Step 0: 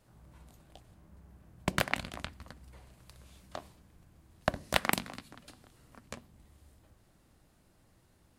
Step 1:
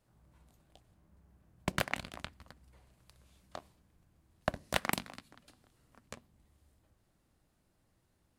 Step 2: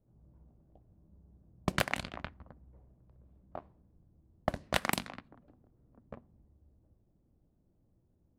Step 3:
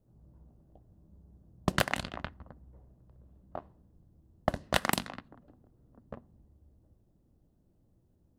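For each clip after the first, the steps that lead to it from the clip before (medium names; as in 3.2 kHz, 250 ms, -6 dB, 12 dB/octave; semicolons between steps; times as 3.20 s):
waveshaping leveller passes 1; trim -6.5 dB
in parallel at +1.5 dB: peak limiter -18 dBFS, peak gain reduction 8 dB; on the sum: level-controlled noise filter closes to 420 Hz, open at -27.5 dBFS; trim -2.5 dB
band-stop 2.3 kHz, Q 8; trim +3 dB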